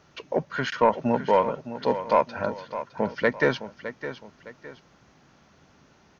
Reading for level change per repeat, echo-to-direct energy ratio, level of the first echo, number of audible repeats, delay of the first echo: −9.0 dB, −11.5 dB, −12.0 dB, 2, 611 ms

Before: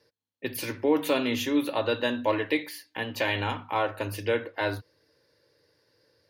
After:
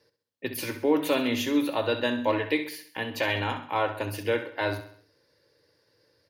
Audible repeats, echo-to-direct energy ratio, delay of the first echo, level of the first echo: 4, −10.5 dB, 66 ms, −11.5 dB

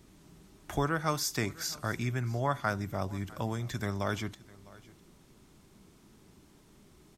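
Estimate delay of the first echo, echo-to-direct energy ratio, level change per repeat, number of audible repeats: 654 ms, −21.5 dB, repeats not evenly spaced, 1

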